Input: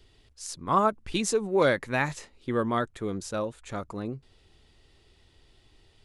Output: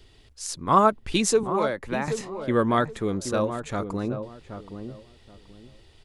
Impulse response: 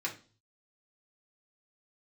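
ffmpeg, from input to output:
-filter_complex "[0:a]asettb=1/sr,asplit=3[link_01][link_02][link_03];[link_01]atrim=end=1.434[link_04];[link_02]atrim=start=1.43:end=2.08,asetpts=PTS-STARTPTS,afade=type=in:duration=0.004:curve=qsin,afade=type=out:start_time=0.646:duration=0.004:curve=qsin,acrossover=split=270|1100[link_05][link_06][link_07];[link_05]acompressor=threshold=-46dB:ratio=4[link_08];[link_06]acompressor=threshold=-31dB:ratio=4[link_09];[link_07]acompressor=threshold=-42dB:ratio=4[link_10];[link_08][link_09][link_10]amix=inputs=3:normalize=0[link_11];[link_03]atrim=start=2.076[link_12];[link_04][link_11]acrossfade=duration=0.004:curve1=hsin:curve2=qsin[link_13];[link_13][link_12]acrossfade=duration=0.004:curve1=qsin:curve2=hsin,asplit=2[link_14][link_15];[link_15]adelay=776,lowpass=frequency=950:poles=1,volume=-8dB,asplit=2[link_16][link_17];[link_17]adelay=776,lowpass=frequency=950:poles=1,volume=0.25,asplit=2[link_18][link_19];[link_19]adelay=776,lowpass=frequency=950:poles=1,volume=0.25[link_20];[link_14][link_16][link_18][link_20]amix=inputs=4:normalize=0,volume=5dB"

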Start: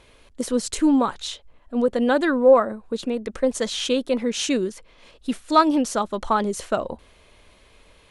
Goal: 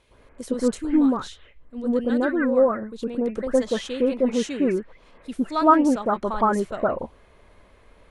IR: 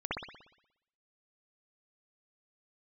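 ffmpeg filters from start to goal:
-filter_complex "[0:a]asettb=1/sr,asplit=3[link_01][link_02][link_03];[link_01]atrim=end=0.774[link_04];[link_02]atrim=start=0.77:end=3.01,asetpts=PTS-STARTPTS,afade=type=in:duration=0.004:curve=qsin,afade=type=out:start_time=2.236:duration=0.004:curve=qsin,equalizer=frequency=820:width_type=o:width=1.5:gain=-9[link_05];[link_03]atrim=start=3.006[link_06];[link_04][link_05]acrossfade=duration=0.004:curve1=hsin:curve2=qsin[link_07];[link_07][link_06]acrossfade=duration=0.004:curve1=qsin:curve2=hsin[link_08];[1:a]atrim=start_sample=2205,atrim=end_sample=4410,asetrate=23814,aresample=44100[link_09];[link_08][link_09]afir=irnorm=-1:irlink=0,volume=-8.5dB"

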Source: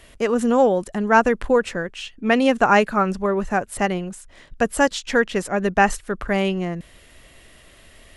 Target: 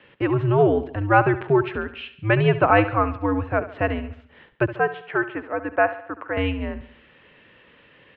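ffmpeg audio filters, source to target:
ffmpeg -i in.wav -filter_complex "[0:a]asettb=1/sr,asplit=3[link_01][link_02][link_03];[link_01]atrim=end=4.764[link_04];[link_02]atrim=start=4.76:end=6.37,asetpts=PTS-STARTPTS,afade=type=in:duration=0.004:curve=qsin,afade=type=out:start_time=1.606:duration=0.004:curve=qsin,acrossover=split=440 2300:gain=0.0891 1 0.0891[link_05][link_06][link_07];[link_05][link_06][link_07]amix=inputs=3:normalize=0[link_08];[link_03]atrim=start=6.366[link_09];[link_04][link_08]acrossfade=duration=0.004:curve1=hsin:curve2=qsin[link_10];[link_10][link_09]acrossfade=duration=0.004:curve1=qsin:curve2=hsin,highpass=frequency=190:width_type=q:width=0.5412,highpass=frequency=190:width_type=q:width=1.307,lowpass=frequency=3300:width_type=q:width=0.5176,lowpass=frequency=3300:width_type=q:width=0.7071,lowpass=frequency=3300:width_type=q:width=1.932,afreqshift=-110,aecho=1:1:70|140|210|280|350:0.2|0.0998|0.0499|0.0249|0.0125,volume=-1dB" out.wav

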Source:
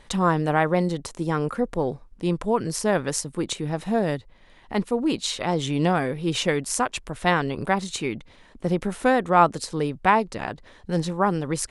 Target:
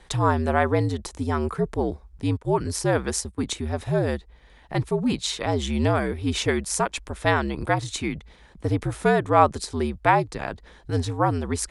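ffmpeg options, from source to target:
ffmpeg -i in.wav -filter_complex "[0:a]bandreject=frequency=2900:width=18,asettb=1/sr,asplit=3[link_01][link_02][link_03];[link_01]atrim=end=2.374[link_04];[link_02]atrim=start=2.37:end=3.52,asetpts=PTS-STARTPTS,afade=type=in:duration=0.004:curve=qsin,afade=type=out:start_time=1.146:duration=0.004:curve=qsin,agate=range=-19dB:threshold=-32dB:ratio=16:detection=peak[link_05];[link_03]atrim=start=3.516[link_06];[link_04][link_05]acrossfade=duration=0.004:curve1=hsin:curve2=qsin[link_07];[link_07][link_06]acrossfade=duration=0.004:curve1=qsin:curve2=hsin,afreqshift=-68" out.wav

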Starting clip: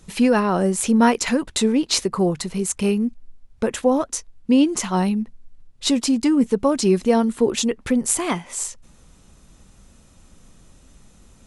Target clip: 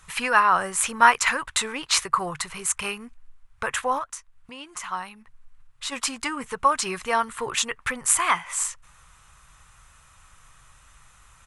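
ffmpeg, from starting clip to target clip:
ffmpeg -i in.wav -filter_complex "[0:a]highshelf=frequency=6100:width_type=q:width=1.5:gain=8,asplit=3[link_01][link_02][link_03];[link_01]afade=type=out:start_time=3.98:duration=0.02[link_04];[link_02]acompressor=threshold=-29dB:ratio=3,afade=type=in:start_time=3.98:duration=0.02,afade=type=out:start_time=5.91:duration=0.02[link_05];[link_03]afade=type=in:start_time=5.91:duration=0.02[link_06];[link_04][link_05][link_06]amix=inputs=3:normalize=0,firequalizer=gain_entry='entry(140,0);entry(200,-16);entry(1100,15);entry(7100,-3)':delay=0.05:min_phase=1,volume=-5.5dB" out.wav

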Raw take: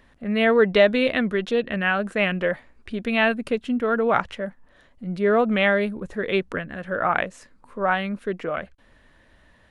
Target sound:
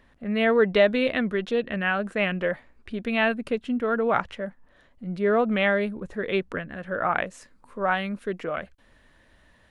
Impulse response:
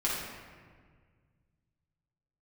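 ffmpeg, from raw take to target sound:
-af "asetnsamples=nb_out_samples=441:pad=0,asendcmd='7.26 highshelf g 4',highshelf=frequency=4500:gain=-3.5,volume=-2.5dB"

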